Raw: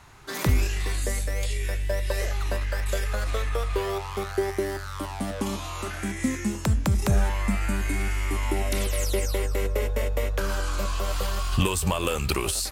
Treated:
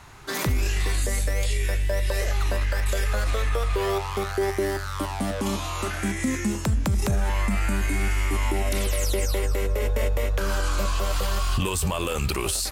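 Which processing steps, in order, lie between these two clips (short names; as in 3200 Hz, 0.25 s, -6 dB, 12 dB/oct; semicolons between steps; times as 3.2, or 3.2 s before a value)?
limiter -19.5 dBFS, peak gain reduction 8.5 dB; gain +4 dB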